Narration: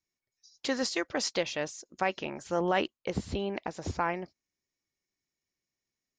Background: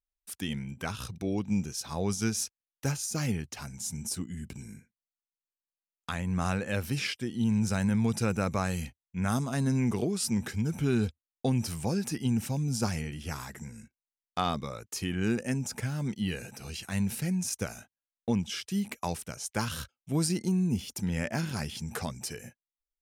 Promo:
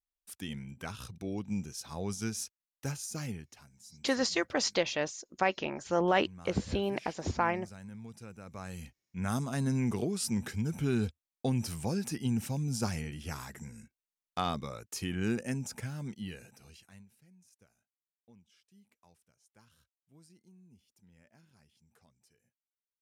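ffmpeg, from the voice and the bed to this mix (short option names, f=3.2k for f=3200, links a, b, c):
-filter_complex "[0:a]adelay=3400,volume=1dB[a];[1:a]volume=10.5dB,afade=t=out:st=3.11:d=0.58:silence=0.211349,afade=t=in:st=8.44:d=0.98:silence=0.149624,afade=t=out:st=15.33:d=1.74:silence=0.0354813[b];[a][b]amix=inputs=2:normalize=0"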